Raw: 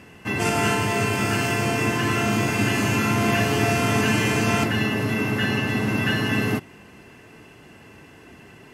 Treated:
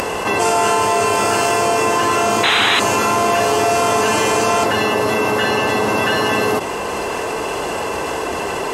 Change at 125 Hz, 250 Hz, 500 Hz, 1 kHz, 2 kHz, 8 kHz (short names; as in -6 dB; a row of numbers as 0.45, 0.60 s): -5.5, -0.5, +10.5, +12.0, +5.0, +9.0 dB